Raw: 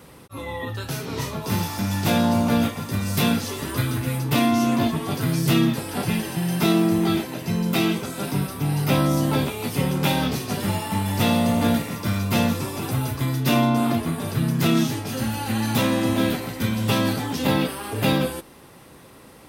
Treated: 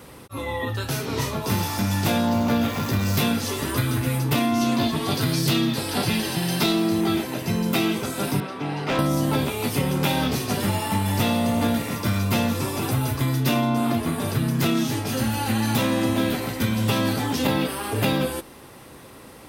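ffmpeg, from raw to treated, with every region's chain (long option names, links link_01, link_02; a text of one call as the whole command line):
ffmpeg -i in.wav -filter_complex "[0:a]asettb=1/sr,asplit=3[link_01][link_02][link_03];[link_01]atrim=end=2.274[link_04];[link_02]atrim=start=2.27:end=3.19,asetpts=PTS-STARTPTS,afade=type=in:duration=0.004:curve=qsin,afade=type=out:start_time=0.916:duration=0.004:curve=qsin,aeval=exprs='val(0)+0.5*0.0282*sgn(val(0))':channel_layout=same,equalizer=frequency=9300:width_type=o:width=0.33:gain=-12[link_05];[link_03]atrim=start=3.186[link_06];[link_04][link_05]acrossfade=duration=0.004:curve1=hsin:curve2=qsin[link_07];[link_07][link_06]acrossfade=duration=0.004:curve1=qsin:curve2=hsin,asettb=1/sr,asplit=3[link_08][link_09][link_10];[link_08]atrim=end=4.614[link_11];[link_09]atrim=start=4.61:end=7.01,asetpts=PTS-STARTPTS,afade=type=in:duration=0.004:curve=qsin,afade=type=out:start_time=2.396:duration=0.004:curve=qsin,highpass=40,equalizer=frequency=4200:width=1.7:gain=8,asoftclip=type=hard:threshold=-12dB[link_12];[link_10]atrim=start=7.006[link_13];[link_11][link_12]acrossfade=duration=0.004:curve1=hsin:curve2=qsin[link_14];[link_14][link_13]acrossfade=duration=0.004:curve1=qsin:curve2=hsin,asettb=1/sr,asplit=3[link_15][link_16][link_17];[link_15]atrim=end=8.404[link_18];[link_16]atrim=start=8.4:end=8.99,asetpts=PTS-STARTPTS,afade=type=in:duration=0.004:curve=qsin,afade=type=out:start_time=0.586:duration=0.004:curve=qsin,highpass=260,lowpass=3400,asoftclip=type=hard:threshold=-22.5dB[link_19];[link_17]atrim=start=8.986[link_20];[link_18][link_19]acrossfade=duration=0.004:curve1=hsin:curve2=qsin[link_21];[link_21][link_20]acrossfade=duration=0.004:curve1=qsin:curve2=hsin,equalizer=frequency=170:width_type=o:width=0.23:gain=-5.5,acompressor=threshold=-21dB:ratio=6,volume=3dB" out.wav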